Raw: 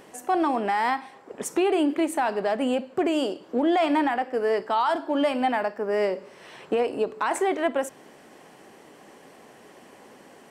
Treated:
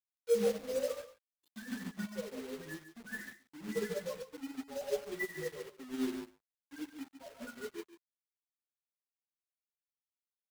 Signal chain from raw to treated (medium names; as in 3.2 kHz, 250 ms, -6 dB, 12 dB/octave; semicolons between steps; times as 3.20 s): frequency-domain pitch shifter -8 st; RIAA curve recording; low-pass that closes with the level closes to 2.5 kHz, closed at -29 dBFS; high-order bell 2.4 kHz +12 dB; in parallel at +1 dB: peak limiter -23 dBFS, peak gain reduction 10 dB; on the sum: loudest bins only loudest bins 2; feedback comb 52 Hz, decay 0.68 s, harmonics all, mix 80%; bit crusher 7-bit; on a send: delay 143 ms -4 dB; on the sum: upward expansion 2.5:1, over -53 dBFS; trim +4 dB